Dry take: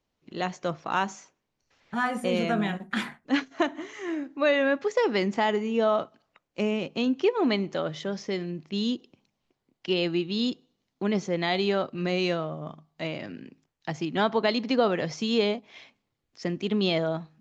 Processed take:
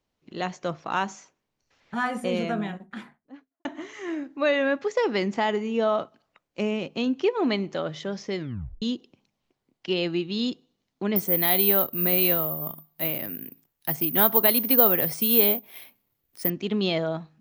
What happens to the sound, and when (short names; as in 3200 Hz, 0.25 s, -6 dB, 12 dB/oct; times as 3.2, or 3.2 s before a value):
2.11–3.65 studio fade out
8.38 tape stop 0.44 s
11.16–16.5 careless resampling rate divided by 3×, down none, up zero stuff